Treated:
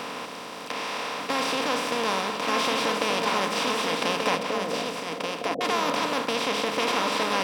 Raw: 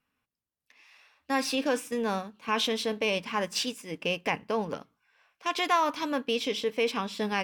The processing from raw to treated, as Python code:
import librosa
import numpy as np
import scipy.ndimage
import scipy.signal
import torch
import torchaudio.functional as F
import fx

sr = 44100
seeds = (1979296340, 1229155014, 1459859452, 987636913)

p1 = fx.bin_compress(x, sr, power=0.2)
p2 = fx.cheby_ripple(p1, sr, hz=730.0, ripple_db=3, at=(4.36, 5.61))
p3 = p2 + fx.echo_single(p2, sr, ms=1183, db=-4.0, dry=0)
y = F.gain(torch.from_numpy(p3), -7.0).numpy()